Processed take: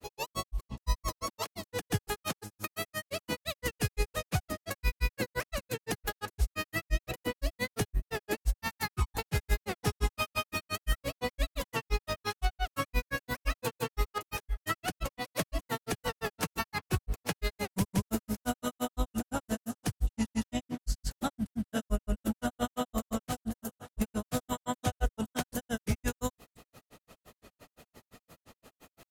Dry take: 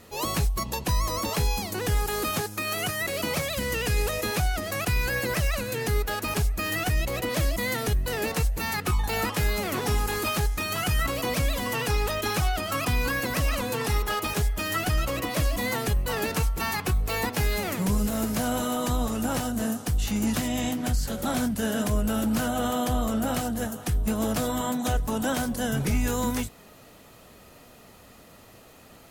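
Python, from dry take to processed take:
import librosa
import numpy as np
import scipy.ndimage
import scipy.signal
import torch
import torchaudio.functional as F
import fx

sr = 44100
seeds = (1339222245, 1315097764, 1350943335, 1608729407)

y = fx.granulator(x, sr, seeds[0], grain_ms=94.0, per_s=5.8, spray_ms=100.0, spread_st=0)
y = y * librosa.db_to_amplitude(-1.0)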